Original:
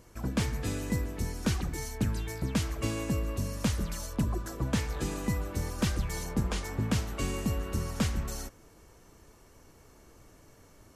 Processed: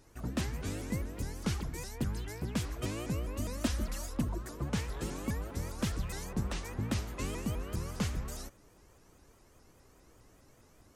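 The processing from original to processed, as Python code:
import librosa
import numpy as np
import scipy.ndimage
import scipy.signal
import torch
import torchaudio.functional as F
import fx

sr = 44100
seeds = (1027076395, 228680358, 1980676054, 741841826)

y = fx.comb(x, sr, ms=3.6, depth=0.8, at=(3.36, 4.21))
y = fx.vibrato_shape(y, sr, shape='saw_up', rate_hz=4.9, depth_cents=250.0)
y = y * librosa.db_to_amplitude(-4.5)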